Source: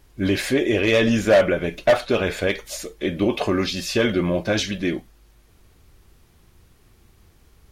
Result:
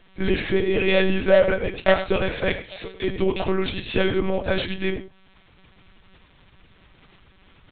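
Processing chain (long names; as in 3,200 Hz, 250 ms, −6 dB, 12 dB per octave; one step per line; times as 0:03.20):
slap from a distant wall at 16 metres, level −12 dB
one-pitch LPC vocoder at 8 kHz 190 Hz
one half of a high-frequency compander encoder only
level −1 dB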